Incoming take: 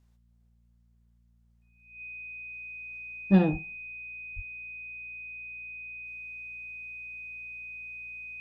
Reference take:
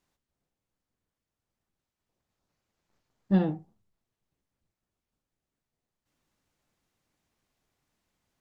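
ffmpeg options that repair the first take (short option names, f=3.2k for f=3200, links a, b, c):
-filter_complex "[0:a]bandreject=f=58:t=h:w=4,bandreject=f=116:t=h:w=4,bandreject=f=174:t=h:w=4,bandreject=f=232:t=h:w=4,bandreject=f=2.5k:w=30,asplit=3[a][b][c];[a]afade=t=out:st=3.51:d=0.02[d];[b]highpass=f=140:w=0.5412,highpass=f=140:w=1.3066,afade=t=in:st=3.51:d=0.02,afade=t=out:st=3.63:d=0.02[e];[c]afade=t=in:st=3.63:d=0.02[f];[d][e][f]amix=inputs=3:normalize=0,asplit=3[g][h][i];[g]afade=t=out:st=4.35:d=0.02[j];[h]highpass=f=140:w=0.5412,highpass=f=140:w=1.3066,afade=t=in:st=4.35:d=0.02,afade=t=out:st=4.47:d=0.02[k];[i]afade=t=in:st=4.47:d=0.02[l];[j][k][l]amix=inputs=3:normalize=0,asetnsamples=n=441:p=0,asendcmd='2.53 volume volume -3dB',volume=0dB"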